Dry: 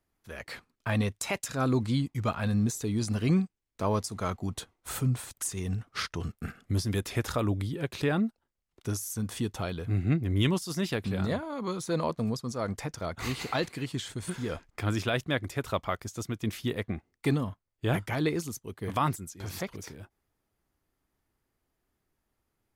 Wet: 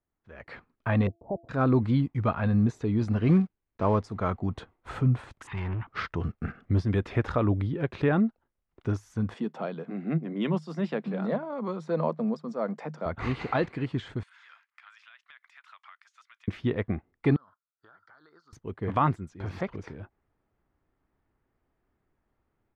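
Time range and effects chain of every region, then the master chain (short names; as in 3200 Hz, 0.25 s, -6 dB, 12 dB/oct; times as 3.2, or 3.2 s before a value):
1.07–1.49 G.711 law mismatch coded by A + steep low-pass 790 Hz 48 dB/oct + de-hum 338.2 Hz, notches 2
3.26–3.97 block floating point 5-bit + bell 12000 Hz -14.5 dB 0.5 oct
5.47–5.87 G.711 law mismatch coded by mu + EQ curve 140 Hz 0 dB, 630 Hz -12 dB, 910 Hz +14 dB, 1300 Hz +2 dB, 2300 Hz +10 dB, 3700 Hz +2 dB, 5800 Hz -29 dB + hard clip -32.5 dBFS
9.34–13.06 rippled Chebyshev high-pass 150 Hz, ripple 6 dB + bell 6500 Hz +7.5 dB 0.92 oct + notch 6300 Hz, Q 7.7
14.23–16.48 Bessel high-pass 1900 Hz, order 6 + compressor, threshold -49 dBFS
17.36–18.53 double band-pass 2500 Hz, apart 1.7 oct + compressor 12:1, threshold -55 dBFS
whole clip: LPF 1900 Hz 12 dB/oct; AGC gain up to 11.5 dB; gain -7.5 dB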